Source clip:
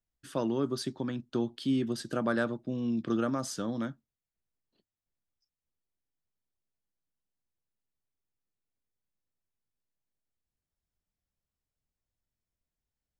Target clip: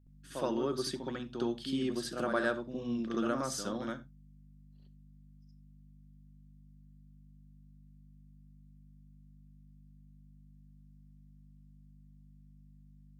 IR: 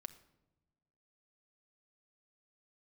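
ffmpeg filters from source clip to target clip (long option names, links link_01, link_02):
-filter_complex "[0:a]lowshelf=frequency=210:gain=-11,aeval=exprs='val(0)+0.00178*(sin(2*PI*50*n/s)+sin(2*PI*2*50*n/s)/2+sin(2*PI*3*50*n/s)/3+sin(2*PI*4*50*n/s)/4+sin(2*PI*5*50*n/s)/5)':channel_layout=same,asplit=2[link_01][link_02];[1:a]atrim=start_sample=2205,atrim=end_sample=4410,adelay=67[link_03];[link_02][link_03]afir=irnorm=-1:irlink=0,volume=12dB[link_04];[link_01][link_04]amix=inputs=2:normalize=0,volume=-7dB"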